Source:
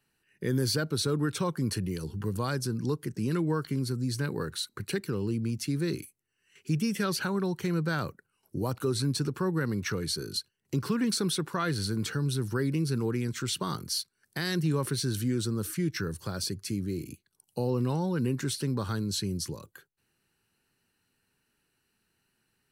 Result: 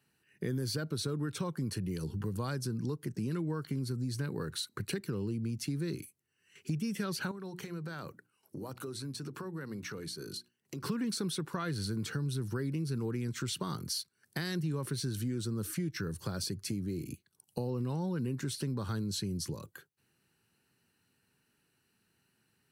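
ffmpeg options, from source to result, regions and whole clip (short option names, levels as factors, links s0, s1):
-filter_complex "[0:a]asettb=1/sr,asplit=3[s0][s1][s2];[s0]atrim=end=7.314[s3];[s1]atrim=start=7.31:end=10.84,asetpts=PTS-STARTPTS,afade=t=in:d=0.004:c=qsin,afade=t=out:st=3.526:d=0.004:c=qsin,highpass=f=210:p=1,acompressor=threshold=0.01:ratio=4:attack=3.2:release=140:knee=1:detection=peak,bandreject=f=60:t=h:w=6,bandreject=f=120:t=h:w=6,bandreject=f=180:t=h:w=6,bandreject=f=240:t=h:w=6,bandreject=f=300:t=h:w=6,bandreject=f=360:t=h:w=6[s4];[s2]atrim=start=10.836[s5];[s3][s4]acrossfade=d=0.004:c1=hsin:c2=qsin[s6];[s6][s5]acrossfade=d=0.004:c1=qsin:c2=hsin,highpass=110,lowshelf=f=150:g=9,acompressor=threshold=0.02:ratio=3"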